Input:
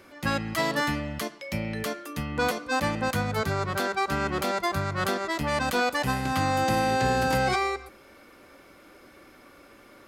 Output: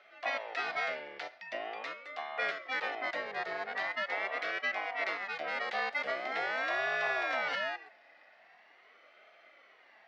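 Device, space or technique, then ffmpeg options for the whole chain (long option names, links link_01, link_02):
voice changer toy: -af "aeval=exprs='val(0)*sin(2*PI*610*n/s+610*0.55/0.43*sin(2*PI*0.43*n/s))':channel_layout=same,highpass=570,equalizer=frequency=680:width_type=q:width=4:gain=8,equalizer=frequency=980:width_type=q:width=4:gain=-7,equalizer=frequency=2000:width_type=q:width=4:gain=9,lowpass=frequency=4500:width=0.5412,lowpass=frequency=4500:width=1.3066,volume=-6dB"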